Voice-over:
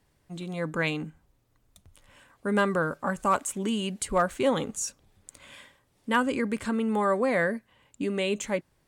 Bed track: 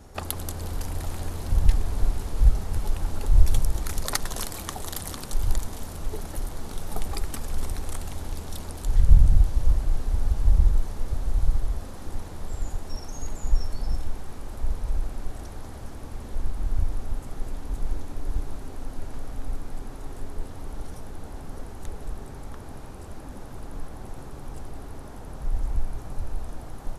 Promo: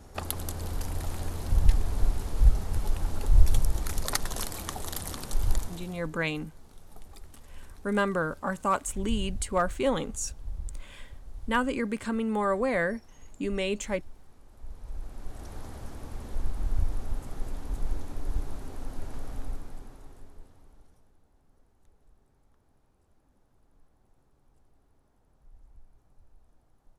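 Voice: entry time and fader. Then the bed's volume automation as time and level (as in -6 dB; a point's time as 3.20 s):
5.40 s, -2.0 dB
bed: 5.59 s -2 dB
6.19 s -18.5 dB
14.50 s -18.5 dB
15.56 s -2.5 dB
19.37 s -2.5 dB
21.24 s -28 dB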